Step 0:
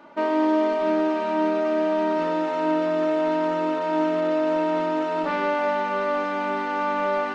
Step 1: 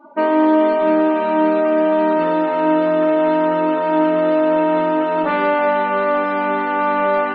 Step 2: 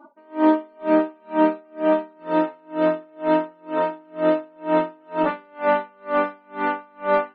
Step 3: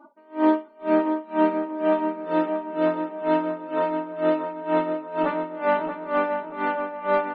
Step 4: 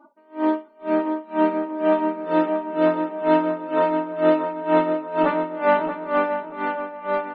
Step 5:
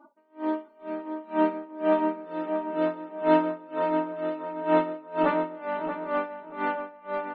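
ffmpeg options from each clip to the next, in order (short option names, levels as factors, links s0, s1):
-af "afftdn=nr=26:nf=-42,volume=2.24"
-af "aeval=exprs='val(0)*pow(10,-36*(0.5-0.5*cos(2*PI*2.1*n/s))/20)':c=same"
-filter_complex "[0:a]asplit=2[s0][s1];[s1]adelay=631,lowpass=f=2500:p=1,volume=0.501,asplit=2[s2][s3];[s3]adelay=631,lowpass=f=2500:p=1,volume=0.38,asplit=2[s4][s5];[s5]adelay=631,lowpass=f=2500:p=1,volume=0.38,asplit=2[s6][s7];[s7]adelay=631,lowpass=f=2500:p=1,volume=0.38,asplit=2[s8][s9];[s9]adelay=631,lowpass=f=2500:p=1,volume=0.38[s10];[s0][s2][s4][s6][s8][s10]amix=inputs=6:normalize=0,volume=0.75"
-af "dynaudnorm=f=410:g=7:m=2.24,volume=0.794"
-af "tremolo=f=1.5:d=0.76,volume=0.75"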